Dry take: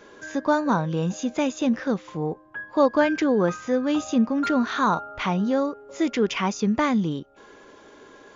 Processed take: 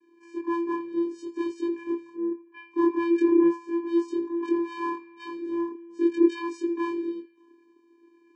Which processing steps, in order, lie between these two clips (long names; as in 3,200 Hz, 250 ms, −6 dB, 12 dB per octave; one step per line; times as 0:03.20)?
every overlapping window played backwards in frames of 58 ms
channel vocoder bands 8, square 339 Hz
on a send: feedback echo with a band-pass in the loop 83 ms, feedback 73%, band-pass 2,300 Hz, level −13 dB
on the sum: multiband upward and downward expander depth 40%